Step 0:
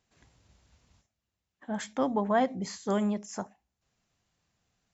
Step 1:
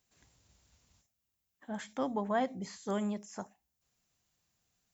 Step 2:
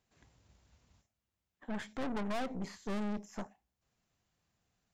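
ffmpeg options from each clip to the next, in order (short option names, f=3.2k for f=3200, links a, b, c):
-filter_complex "[0:a]acrossover=split=3600[a][b];[b]acompressor=threshold=-53dB:ratio=4:attack=1:release=60[c];[a][c]amix=inputs=2:normalize=0,aemphasis=mode=production:type=50fm,volume=-5.5dB"
-af "lowpass=f=2.2k:p=1,aeval=exprs='(tanh(141*val(0)+0.8)-tanh(0.8))/141':c=same,volume=8dB"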